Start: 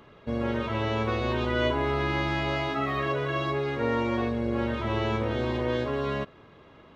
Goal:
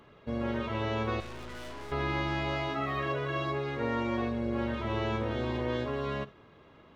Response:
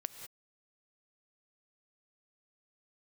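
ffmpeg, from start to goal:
-filter_complex "[0:a]asettb=1/sr,asplit=3[link_01][link_02][link_03];[link_01]atrim=end=1.204[link_04];[link_02]atrim=start=1.2:end=1.92,asetpts=PTS-STARTPTS,afade=type=in:duration=0.004:curve=qsin,afade=type=out:start_time=0.716:duration=0.004:curve=qsin,aeval=exprs='(tanh(79.4*val(0)+0.7)-tanh(0.7))/79.4':channel_layout=same[link_05];[link_03]atrim=start=1.916[link_06];[link_04][link_05]acrossfade=duration=0.004:curve1=hsin:curve2=qsin[link_07];[link_07][link_06]acrossfade=duration=0.004:curve1=qsin:curve2=hsin[link_08];[1:a]atrim=start_sample=2205,atrim=end_sample=4410,asetrate=52920,aresample=44100[link_09];[link_08][link_09]afir=irnorm=-1:irlink=0"

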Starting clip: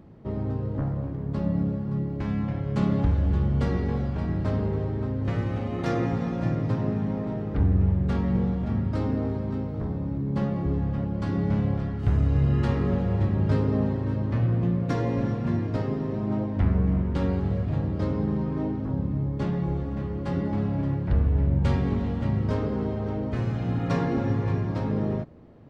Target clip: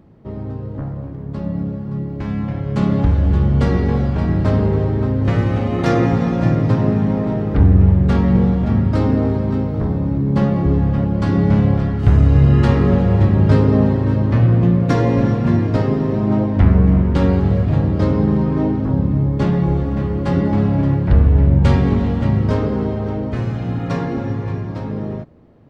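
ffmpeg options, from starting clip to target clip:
ffmpeg -i in.wav -af "dynaudnorm=framelen=190:gausssize=31:maxgain=11dB,volume=1.5dB" out.wav

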